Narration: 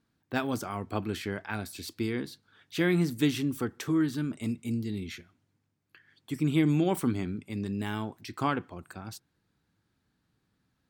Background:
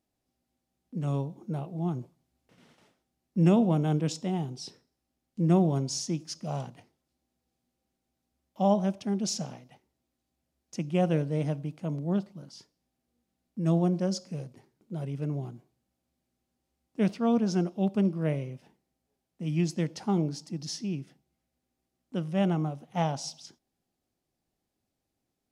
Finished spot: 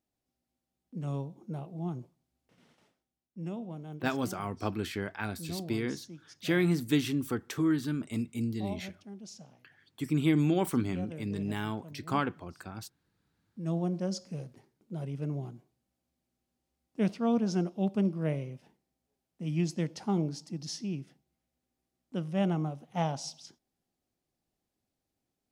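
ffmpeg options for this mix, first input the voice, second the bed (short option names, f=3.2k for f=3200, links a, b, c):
-filter_complex "[0:a]adelay=3700,volume=-1dB[a];[1:a]volume=9dB,afade=t=out:st=2.83:d=0.5:silence=0.266073,afade=t=in:st=13.12:d=1.2:silence=0.199526[b];[a][b]amix=inputs=2:normalize=0"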